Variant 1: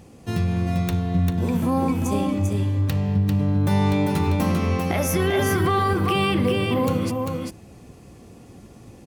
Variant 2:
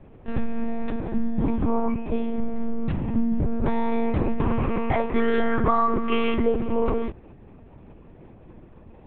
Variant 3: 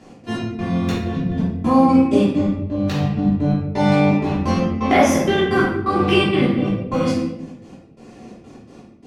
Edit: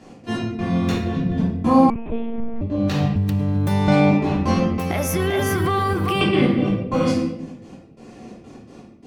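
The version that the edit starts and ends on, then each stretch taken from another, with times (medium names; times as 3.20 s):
3
1.90–2.61 s: from 2
3.16–3.88 s: from 1
4.78–6.21 s: from 1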